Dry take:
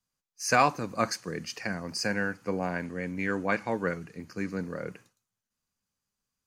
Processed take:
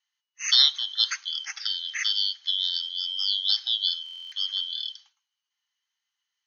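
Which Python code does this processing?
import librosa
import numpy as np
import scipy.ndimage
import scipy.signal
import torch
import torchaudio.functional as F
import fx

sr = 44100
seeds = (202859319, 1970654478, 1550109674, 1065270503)

y = fx.band_shuffle(x, sr, order='3412')
y = fx.brickwall_bandpass(y, sr, low_hz=760.0, high_hz=6700.0)
y = fx.buffer_glitch(y, sr, at_s=(4.04,), block=1024, repeats=11)
y = y * librosa.db_to_amplitude(3.5)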